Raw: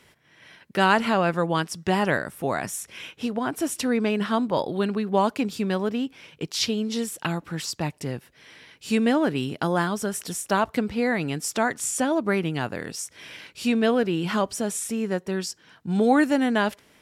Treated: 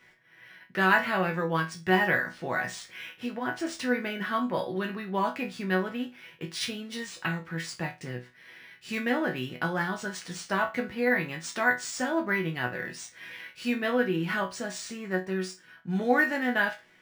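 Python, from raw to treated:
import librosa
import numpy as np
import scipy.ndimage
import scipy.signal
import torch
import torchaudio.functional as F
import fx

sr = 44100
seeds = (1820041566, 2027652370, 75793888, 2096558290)

y = fx.peak_eq(x, sr, hz=1800.0, db=10.0, octaves=0.68)
y = fx.resonator_bank(y, sr, root=47, chord='sus4', decay_s=0.25)
y = np.interp(np.arange(len(y)), np.arange(len(y))[::3], y[::3])
y = F.gain(torch.from_numpy(y), 7.0).numpy()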